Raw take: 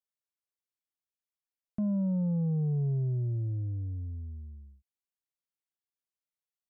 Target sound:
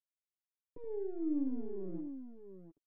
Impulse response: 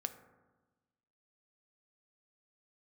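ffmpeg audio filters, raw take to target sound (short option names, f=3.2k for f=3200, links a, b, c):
-filter_complex "[0:a]aeval=exprs='val(0)+0.5*0.00596*sgn(val(0))':c=same,acontrast=39,highpass=f=88:w=0.5412,highpass=f=88:w=1.3066,areverse,acompressor=threshold=-35dB:ratio=16,areverse,acrusher=bits=4:dc=4:mix=0:aa=0.000001,asetrate=103194,aresample=44100,lowpass=f=340:t=q:w=4.2,aemphasis=mode=production:type=75kf,aecho=1:1:7.1:0.81,asplit=2[a][b];[b]aecho=0:1:74|101|705:0.398|0.119|0.355[c];[a][c]amix=inputs=2:normalize=0,volume=-5dB"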